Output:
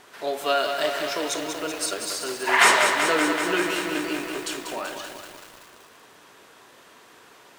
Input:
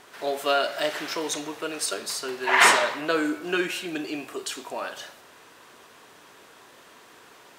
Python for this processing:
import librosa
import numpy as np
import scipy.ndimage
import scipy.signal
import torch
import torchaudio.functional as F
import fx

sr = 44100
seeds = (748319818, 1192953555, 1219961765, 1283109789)

y = fx.echo_crushed(x, sr, ms=191, feedback_pct=80, bits=7, wet_db=-6.0)